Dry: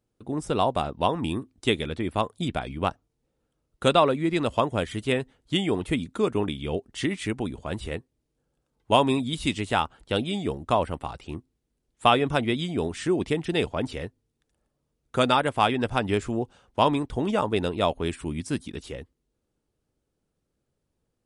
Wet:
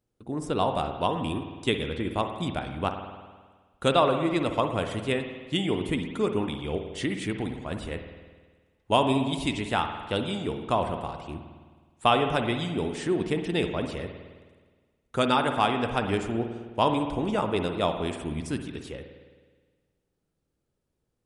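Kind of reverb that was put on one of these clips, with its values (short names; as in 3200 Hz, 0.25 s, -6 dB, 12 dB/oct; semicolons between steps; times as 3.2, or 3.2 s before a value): spring tank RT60 1.5 s, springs 52 ms, chirp 45 ms, DRR 6 dB; gain -2.5 dB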